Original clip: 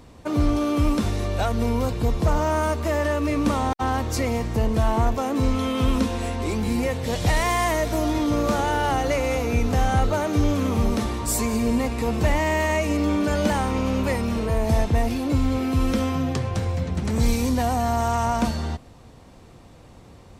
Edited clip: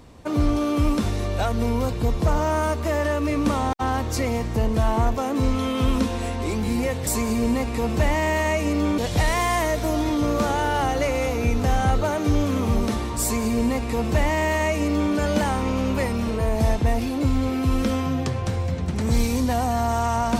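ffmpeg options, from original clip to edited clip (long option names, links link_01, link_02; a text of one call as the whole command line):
ffmpeg -i in.wav -filter_complex "[0:a]asplit=3[link_01][link_02][link_03];[link_01]atrim=end=7.072[link_04];[link_02]atrim=start=11.308:end=13.222[link_05];[link_03]atrim=start=7.068[link_06];[link_04][link_05]acrossfade=duration=0.004:curve1=hsin:curve2=hsin[link_07];[link_07][link_06]acrossfade=duration=0.004:curve1=hsin:curve2=hsin" out.wav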